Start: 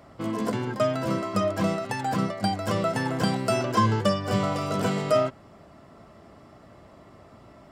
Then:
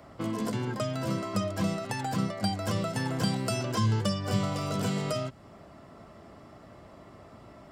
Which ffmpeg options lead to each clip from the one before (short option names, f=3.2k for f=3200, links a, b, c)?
-filter_complex "[0:a]acrossover=split=200|3000[a][b][c];[b]acompressor=threshold=-32dB:ratio=6[d];[a][d][c]amix=inputs=3:normalize=0"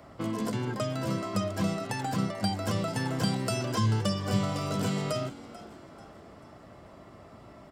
-filter_complex "[0:a]asplit=5[a][b][c][d][e];[b]adelay=439,afreqshift=87,volume=-17.5dB[f];[c]adelay=878,afreqshift=174,volume=-24.8dB[g];[d]adelay=1317,afreqshift=261,volume=-32.2dB[h];[e]adelay=1756,afreqshift=348,volume=-39.5dB[i];[a][f][g][h][i]amix=inputs=5:normalize=0"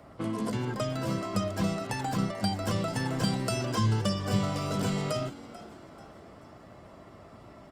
-ar 48000 -c:a libopus -b:a 32k